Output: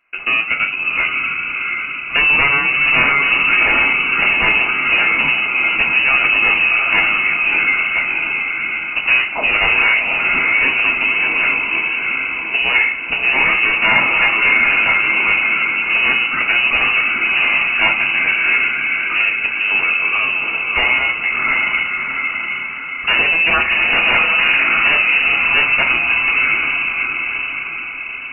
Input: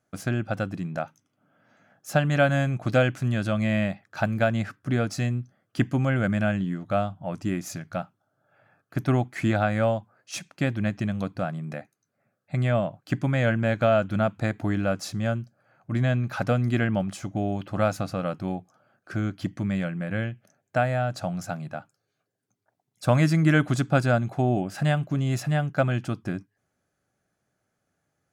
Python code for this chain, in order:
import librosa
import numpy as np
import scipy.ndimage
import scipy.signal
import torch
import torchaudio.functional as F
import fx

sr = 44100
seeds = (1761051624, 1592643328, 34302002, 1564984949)

y = fx.peak_eq(x, sr, hz=71.0, db=-12.5, octaves=0.98)
y = fx.echo_diffused(y, sr, ms=698, feedback_pct=52, wet_db=-4.0)
y = fx.fold_sine(y, sr, drive_db=11, ceiling_db=-9.0)
y = fx.freq_invert(y, sr, carrier_hz=2800)
y = fx.rev_double_slope(y, sr, seeds[0], early_s=0.36, late_s=2.4, knee_db=-20, drr_db=1.0)
y = y * 10.0 ** (-3.5 / 20.0)